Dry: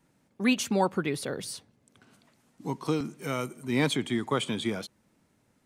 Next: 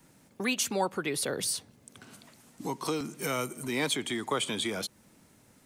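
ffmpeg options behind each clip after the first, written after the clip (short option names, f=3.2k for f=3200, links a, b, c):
-filter_complex "[0:a]highshelf=f=5.2k:g=8,acompressor=threshold=-38dB:ratio=2,acrossover=split=320|1200[a][b][c];[a]alimiter=level_in=17.5dB:limit=-24dB:level=0:latency=1:release=180,volume=-17.5dB[d];[d][b][c]amix=inputs=3:normalize=0,volume=7dB"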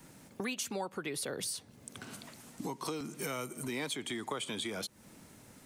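-af "acompressor=threshold=-43dB:ratio=3,volume=4.5dB"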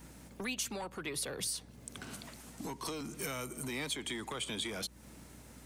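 -filter_complex "[0:a]acrossover=split=120|1800[a][b][c];[b]asoftclip=type=tanh:threshold=-38dB[d];[a][d][c]amix=inputs=3:normalize=0,aeval=exprs='val(0)+0.00126*(sin(2*PI*60*n/s)+sin(2*PI*2*60*n/s)/2+sin(2*PI*3*60*n/s)/3+sin(2*PI*4*60*n/s)/4+sin(2*PI*5*60*n/s)/5)':c=same,volume=1dB"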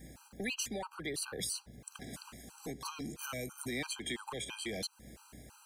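-af "afftfilt=real='re*gt(sin(2*PI*3*pts/sr)*(1-2*mod(floor(b*sr/1024/800),2)),0)':imag='im*gt(sin(2*PI*3*pts/sr)*(1-2*mod(floor(b*sr/1024/800),2)),0)':win_size=1024:overlap=0.75,volume=2dB"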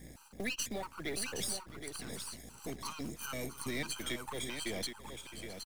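-af "aeval=exprs='if(lt(val(0),0),0.447*val(0),val(0))':c=same,acrusher=bits=5:mode=log:mix=0:aa=0.000001,aecho=1:1:664|769:0.158|0.422,volume=2.5dB"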